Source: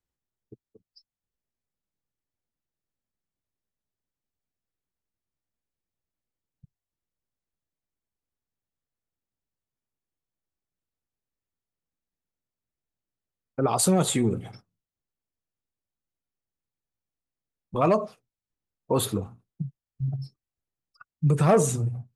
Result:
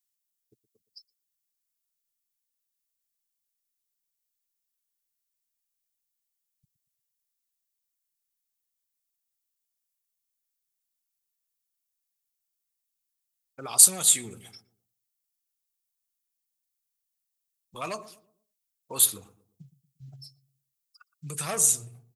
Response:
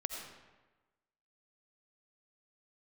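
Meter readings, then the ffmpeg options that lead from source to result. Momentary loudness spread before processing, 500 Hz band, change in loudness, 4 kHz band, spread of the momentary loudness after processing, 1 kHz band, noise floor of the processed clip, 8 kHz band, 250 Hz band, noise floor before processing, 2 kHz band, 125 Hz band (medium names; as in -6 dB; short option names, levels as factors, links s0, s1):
17 LU, -15.5 dB, +4.5 dB, +4.0 dB, 22 LU, -11.0 dB, -83 dBFS, +10.5 dB, -18.0 dB, under -85 dBFS, -3.0 dB, -18.5 dB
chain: -filter_complex "[0:a]tiltshelf=f=1100:g=-7,asplit=2[s0][s1];[s1]adelay=117,lowpass=f=820:p=1,volume=0.188,asplit=2[s2][s3];[s3]adelay=117,lowpass=f=820:p=1,volume=0.41,asplit=2[s4][s5];[s5]adelay=117,lowpass=f=820:p=1,volume=0.41,asplit=2[s6][s7];[s7]adelay=117,lowpass=f=820:p=1,volume=0.41[s8];[s0][s2][s4][s6][s8]amix=inputs=5:normalize=0,crystalizer=i=5:c=0,volume=0.251"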